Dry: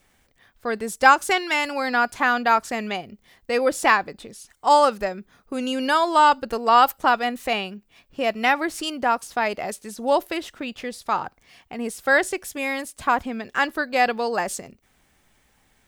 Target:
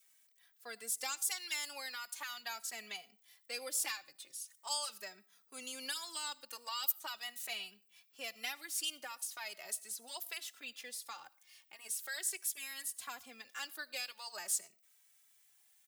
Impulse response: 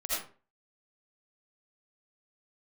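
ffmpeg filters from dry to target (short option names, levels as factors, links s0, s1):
-filter_complex "[0:a]aderivative,acrossover=split=230|3000[s0][s1][s2];[s1]acompressor=threshold=0.00891:ratio=6[s3];[s0][s3][s2]amix=inputs=3:normalize=0,asplit=2[s4][s5];[1:a]atrim=start_sample=2205[s6];[s5][s6]afir=irnorm=-1:irlink=0,volume=0.0473[s7];[s4][s7]amix=inputs=2:normalize=0,asplit=2[s8][s9];[s9]adelay=2.7,afreqshift=0.41[s10];[s8][s10]amix=inputs=2:normalize=1"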